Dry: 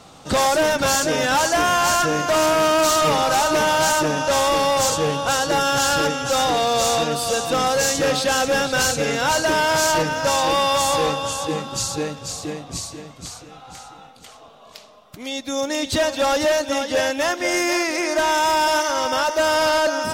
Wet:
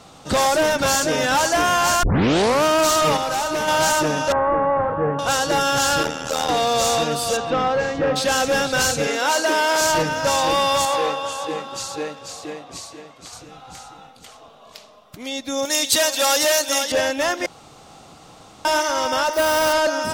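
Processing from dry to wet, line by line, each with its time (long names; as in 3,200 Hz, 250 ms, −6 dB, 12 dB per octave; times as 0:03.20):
0:02.03: tape start 0.61 s
0:03.17–0:03.68: clip gain −4.5 dB
0:04.32–0:05.19: Butterworth low-pass 1,800 Hz
0:06.03–0:06.49: amplitude modulation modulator 79 Hz, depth 85%
0:07.36–0:08.15: low-pass filter 3,300 Hz → 1,600 Hz
0:09.07–0:09.81: high-pass filter 260 Hz 24 dB per octave
0:10.85–0:13.33: bass and treble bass −14 dB, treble −7 dB
0:15.65–0:16.92: RIAA equalisation recording
0:17.46–0:18.65: fill with room tone
0:19.33–0:19.73: bad sample-rate conversion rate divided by 4×, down none, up hold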